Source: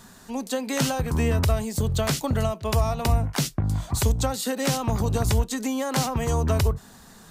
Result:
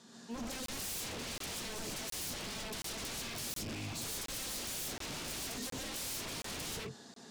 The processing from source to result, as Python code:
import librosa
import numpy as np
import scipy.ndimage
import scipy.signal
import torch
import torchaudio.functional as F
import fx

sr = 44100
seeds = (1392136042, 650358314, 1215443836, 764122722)

y = fx.rattle_buzz(x, sr, strikes_db=-28.0, level_db=-25.0)
y = scipy.signal.sosfilt(scipy.signal.cheby1(2, 1.0, [280.0, 5000.0], 'bandpass', fs=sr, output='sos'), y)
y = fx.rev_gated(y, sr, seeds[0], gate_ms=170, shape='rising', drr_db=-4.5)
y = 10.0 ** (-29.0 / 20.0) * (np.abs((y / 10.0 ** (-29.0 / 20.0) + 3.0) % 4.0 - 2.0) - 1.0)
y = fx.peak_eq(y, sr, hz=1300.0, db=-9.0, octaves=2.6)
y = fx.buffer_crackle(y, sr, first_s=0.66, period_s=0.72, block=1024, kind='zero')
y = F.gain(torch.from_numpy(y), -4.0).numpy()